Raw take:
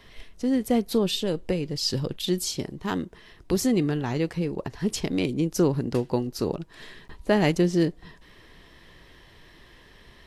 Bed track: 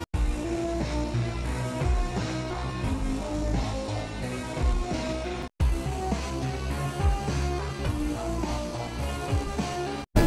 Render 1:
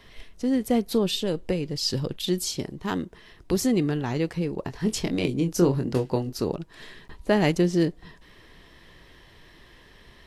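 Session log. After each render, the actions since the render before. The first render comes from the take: 4.65–6.37 doubler 23 ms -6.5 dB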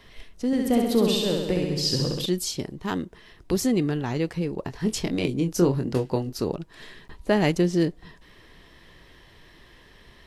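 0.46–2.26 flutter echo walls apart 11.4 m, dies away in 1.1 s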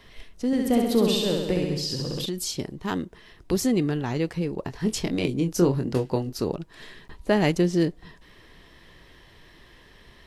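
1.76–2.49 compressor, threshold -25 dBFS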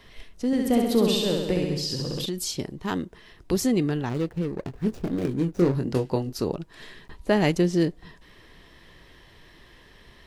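4.09–5.75 median filter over 41 samples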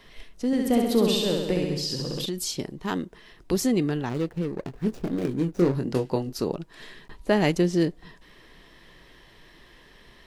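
bell 81 Hz -9.5 dB 0.75 oct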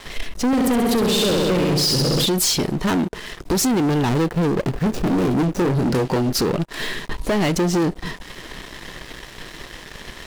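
compressor 8:1, threshold -25 dBFS, peak gain reduction 10 dB; sample leveller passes 5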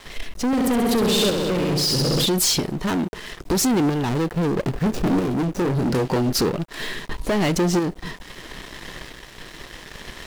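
tremolo saw up 0.77 Hz, depth 40%; bit-crush 10-bit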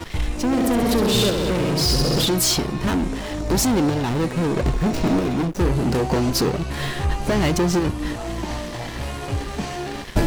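add bed track +1.5 dB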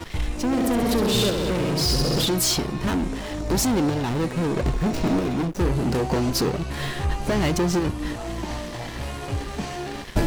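gain -2.5 dB

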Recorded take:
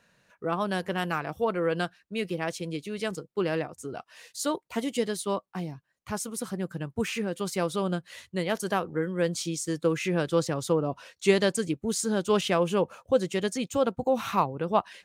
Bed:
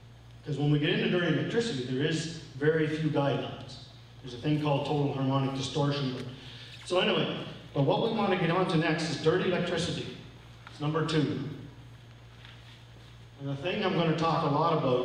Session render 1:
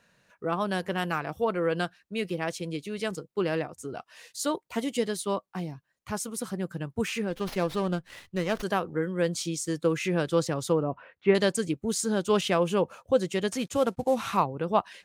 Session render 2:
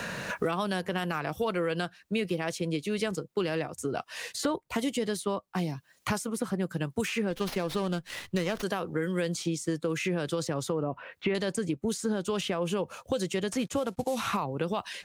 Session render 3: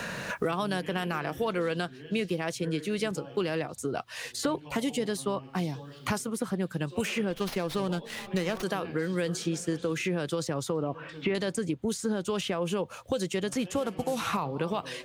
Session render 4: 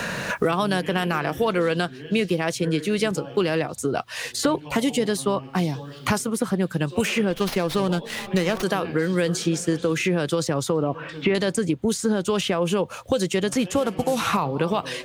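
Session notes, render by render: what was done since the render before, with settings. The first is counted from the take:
7.3–8.63 running maximum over 5 samples; 10.83–11.35 LPF 2200 Hz 24 dB/oct; 13.52–14.37 CVSD 64 kbps
limiter -21 dBFS, peak gain reduction 11.5 dB; three-band squash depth 100%
add bed -17.5 dB
gain +7.5 dB

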